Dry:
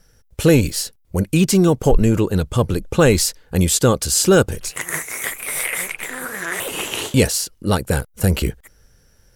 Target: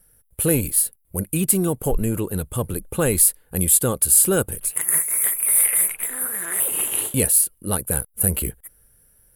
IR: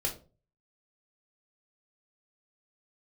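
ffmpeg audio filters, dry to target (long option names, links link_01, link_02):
-af "highshelf=frequency=7900:width_type=q:width=3:gain=12.5,volume=-7.5dB"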